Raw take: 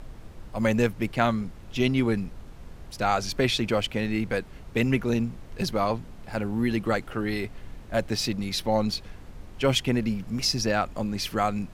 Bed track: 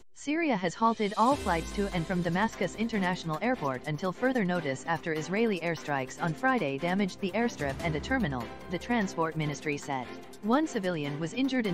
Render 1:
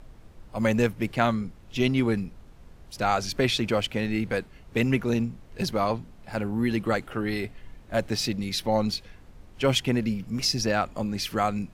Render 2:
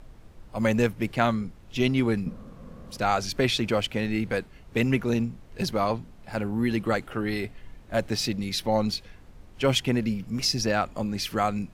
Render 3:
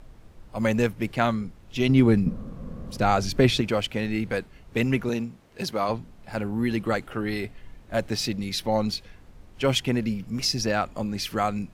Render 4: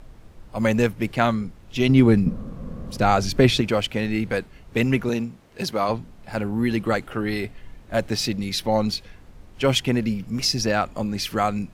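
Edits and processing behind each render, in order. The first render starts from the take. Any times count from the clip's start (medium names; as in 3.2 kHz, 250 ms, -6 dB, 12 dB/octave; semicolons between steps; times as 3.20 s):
noise print and reduce 6 dB
2.26–2.97 s: small resonant body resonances 210/510/1100 Hz, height 15 dB, ringing for 25 ms
1.89–3.61 s: bass shelf 490 Hz +8 dB; 5.09–5.89 s: high-pass 230 Hz 6 dB/octave
trim +3 dB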